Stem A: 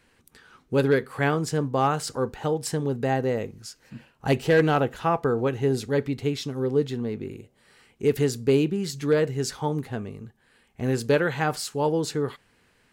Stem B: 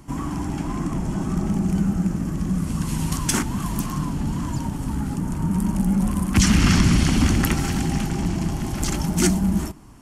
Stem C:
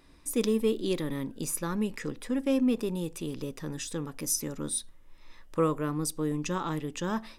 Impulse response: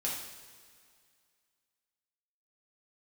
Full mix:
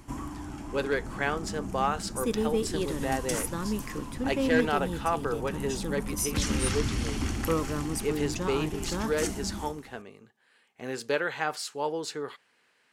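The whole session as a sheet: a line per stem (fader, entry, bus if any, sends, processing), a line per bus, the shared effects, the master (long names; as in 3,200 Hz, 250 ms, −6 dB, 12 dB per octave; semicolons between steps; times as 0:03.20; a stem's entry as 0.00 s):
−3.5 dB, 0.00 s, no send, meter weighting curve A
−3.0 dB, 0.00 s, send −20 dB, parametric band 170 Hz −12.5 dB 0.43 octaves; automatic ducking −10 dB, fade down 0.35 s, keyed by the first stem
−2.0 dB, 1.90 s, no send, no processing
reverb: on, pre-delay 3 ms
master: no processing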